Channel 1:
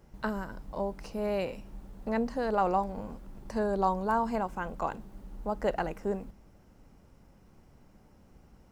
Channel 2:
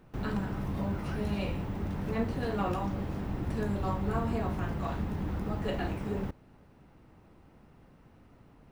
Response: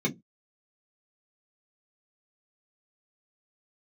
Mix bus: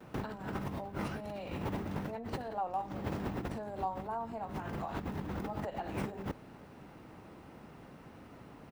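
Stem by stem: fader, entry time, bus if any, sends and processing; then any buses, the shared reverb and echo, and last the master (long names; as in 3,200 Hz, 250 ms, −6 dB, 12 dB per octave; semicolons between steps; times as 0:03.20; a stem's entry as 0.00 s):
−19.5 dB, 0.00 s, no send, parametric band 760 Hz +13 dB 0.94 octaves
+2.0 dB, 5.2 ms, no send, high-pass filter 190 Hz 6 dB per octave; compressor whose output falls as the input rises −41 dBFS, ratio −0.5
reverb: not used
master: no processing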